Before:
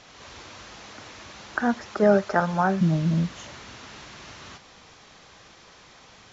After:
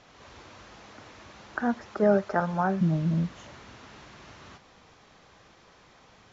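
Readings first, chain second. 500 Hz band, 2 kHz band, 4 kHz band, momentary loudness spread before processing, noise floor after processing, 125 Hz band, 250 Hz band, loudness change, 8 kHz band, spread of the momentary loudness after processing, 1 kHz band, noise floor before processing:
-3.5 dB, -5.5 dB, -9.0 dB, 22 LU, -57 dBFS, -3.0 dB, -3.0 dB, -3.5 dB, n/a, 10 LU, -4.0 dB, -52 dBFS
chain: high shelf 2300 Hz -8 dB; gain -3 dB

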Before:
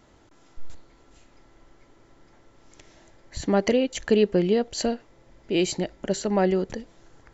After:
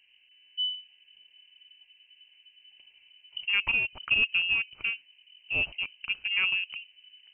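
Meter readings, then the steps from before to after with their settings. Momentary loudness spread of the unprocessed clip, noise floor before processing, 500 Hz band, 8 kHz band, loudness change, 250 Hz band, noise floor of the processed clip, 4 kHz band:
13 LU, -57 dBFS, -29.5 dB, n/a, -2.5 dB, -29.0 dB, -63 dBFS, +6.0 dB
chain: Wiener smoothing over 25 samples; inverted band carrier 3000 Hz; low shelf 110 Hz +4.5 dB; gain -5.5 dB

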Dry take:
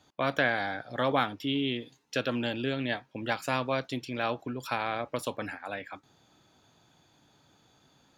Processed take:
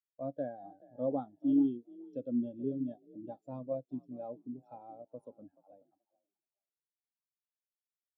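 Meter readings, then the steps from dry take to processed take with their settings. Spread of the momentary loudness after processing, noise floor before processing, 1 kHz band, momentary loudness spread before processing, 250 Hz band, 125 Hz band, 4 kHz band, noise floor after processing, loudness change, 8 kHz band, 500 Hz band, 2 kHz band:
20 LU, -65 dBFS, -16.0 dB, 10 LU, 0.0 dB, -10.5 dB, under -35 dB, under -85 dBFS, -5.0 dB, under -30 dB, -7.5 dB, under -35 dB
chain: bell 1900 Hz -15 dB 1.4 oct; frequency-shifting echo 0.429 s, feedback 41%, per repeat +45 Hz, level -9.5 dB; spectral expander 2.5:1; gain -1.5 dB

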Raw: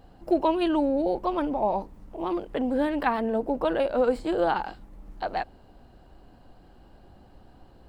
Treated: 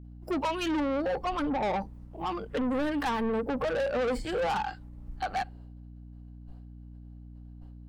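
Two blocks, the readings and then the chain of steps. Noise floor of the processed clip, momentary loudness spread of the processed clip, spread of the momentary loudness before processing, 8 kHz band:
-47 dBFS, 20 LU, 9 LU, n/a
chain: spectral noise reduction 13 dB; expander -55 dBFS; in parallel at -0.5 dB: limiter -21.5 dBFS, peak gain reduction 10 dB; on the sum: soft clip -26 dBFS, distortion -7 dB; hum 60 Hz, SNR 14 dB

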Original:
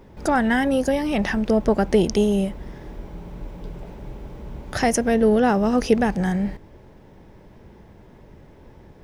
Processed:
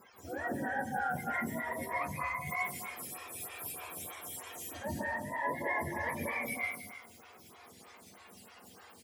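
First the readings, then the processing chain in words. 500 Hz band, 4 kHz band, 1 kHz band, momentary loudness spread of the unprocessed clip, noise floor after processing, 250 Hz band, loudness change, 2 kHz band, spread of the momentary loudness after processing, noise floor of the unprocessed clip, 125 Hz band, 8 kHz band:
-20.0 dB, -16.0 dB, -9.5 dB, 20 LU, -57 dBFS, -22.0 dB, -16.0 dB, -6.0 dB, 20 LU, -48 dBFS, -16.5 dB, -9.0 dB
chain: spectrum mirrored in octaves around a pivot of 650 Hz; reverse; compressor 8:1, threshold -31 dBFS, peak gain reduction 15.5 dB; reverse; reverb removal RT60 1.1 s; on a send: loudspeakers at several distances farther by 14 m -12 dB, 81 m -9 dB; on the sum: plate-style reverb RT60 1.1 s, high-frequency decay 0.75×, pre-delay 0.12 s, DRR -3 dB; photocell phaser 3.2 Hz; gain -3 dB

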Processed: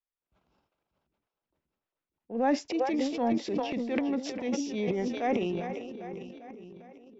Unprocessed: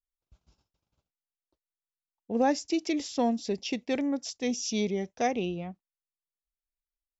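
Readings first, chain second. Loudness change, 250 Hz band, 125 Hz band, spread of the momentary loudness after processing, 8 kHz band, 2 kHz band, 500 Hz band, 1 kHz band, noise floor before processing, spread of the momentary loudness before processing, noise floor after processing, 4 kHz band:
-0.5 dB, 0.0 dB, 0.0 dB, 17 LU, n/a, -0.5 dB, +0.5 dB, 0.0 dB, under -85 dBFS, 7 LU, under -85 dBFS, -4.5 dB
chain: three-band isolator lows -13 dB, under 180 Hz, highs -20 dB, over 3000 Hz; split-band echo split 430 Hz, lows 0.591 s, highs 0.4 s, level -10 dB; transient shaper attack -6 dB, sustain +11 dB

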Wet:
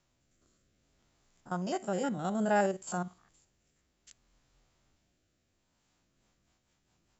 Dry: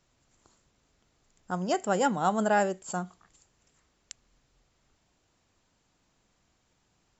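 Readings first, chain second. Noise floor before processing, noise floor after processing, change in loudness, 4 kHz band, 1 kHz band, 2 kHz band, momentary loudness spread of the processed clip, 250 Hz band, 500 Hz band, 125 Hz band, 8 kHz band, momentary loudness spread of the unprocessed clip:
-72 dBFS, -77 dBFS, -4.5 dB, -6.5 dB, -6.5 dB, -5.0 dB, 10 LU, -2.5 dB, -4.0 dB, -2.0 dB, n/a, 11 LU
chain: stepped spectrum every 50 ms; rotary speaker horn 0.6 Hz, later 5 Hz, at 5.61; notch 450 Hz, Q 12

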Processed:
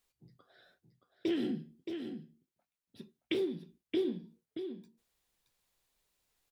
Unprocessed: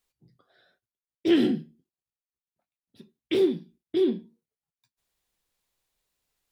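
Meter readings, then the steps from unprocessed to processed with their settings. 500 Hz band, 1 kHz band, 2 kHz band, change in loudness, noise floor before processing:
-10.0 dB, -10.0 dB, -7.5 dB, -11.5 dB, under -85 dBFS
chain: compressor 6:1, threshold -31 dBFS, peak gain reduction 14 dB; echo 0.623 s -7.5 dB

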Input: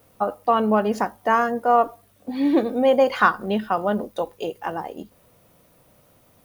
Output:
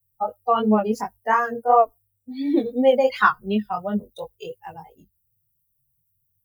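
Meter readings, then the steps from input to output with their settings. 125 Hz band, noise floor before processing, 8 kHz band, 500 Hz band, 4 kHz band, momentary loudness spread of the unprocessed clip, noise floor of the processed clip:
+0.5 dB, -58 dBFS, n/a, -0.5 dB, -1.5 dB, 13 LU, -72 dBFS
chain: per-bin expansion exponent 2; chorus 2.8 Hz, delay 18.5 ms, depth 4.8 ms; gain +5.5 dB

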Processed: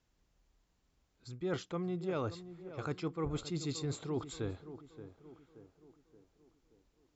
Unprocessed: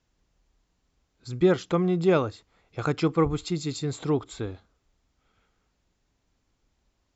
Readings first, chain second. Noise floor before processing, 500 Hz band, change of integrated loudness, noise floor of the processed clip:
-75 dBFS, -13.5 dB, -13.0 dB, -77 dBFS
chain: reverse; compressor 12:1, threshold -29 dBFS, peak gain reduction 14.5 dB; reverse; tape echo 0.576 s, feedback 55%, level -11 dB, low-pass 1300 Hz; gain -4 dB

